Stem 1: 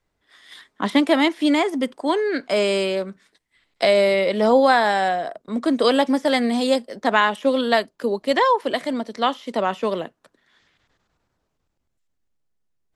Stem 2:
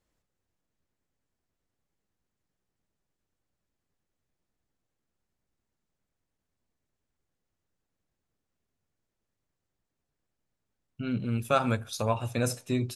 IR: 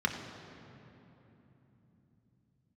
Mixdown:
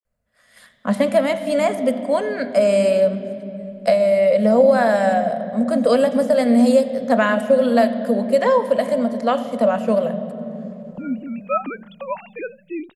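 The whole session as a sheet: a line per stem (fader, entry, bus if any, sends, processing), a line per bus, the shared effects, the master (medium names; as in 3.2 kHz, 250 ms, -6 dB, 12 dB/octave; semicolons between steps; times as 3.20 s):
-0.5 dB, 0.05 s, send -11 dB, FFT filter 220 Hz 0 dB, 330 Hz -25 dB, 590 Hz +4 dB, 850 Hz -14 dB, 1.8 kHz -10 dB, 4.2 kHz -6 dB, 9.3 kHz +9 dB; compression, threshold -19 dBFS, peak gain reduction 8 dB; tone controls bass +1 dB, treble -8 dB
-6.5 dB, 0.00 s, no send, formants replaced by sine waves; vibrato 0.32 Hz 48 cents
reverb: on, RT60 3.4 s, pre-delay 3 ms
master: level rider gain up to 7.5 dB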